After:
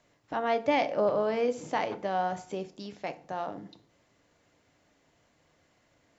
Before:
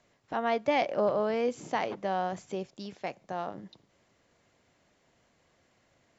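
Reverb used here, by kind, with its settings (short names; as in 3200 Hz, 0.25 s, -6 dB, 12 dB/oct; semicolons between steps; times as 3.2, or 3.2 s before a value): FDN reverb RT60 0.5 s, low-frequency decay 1.25×, high-frequency decay 0.7×, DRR 9 dB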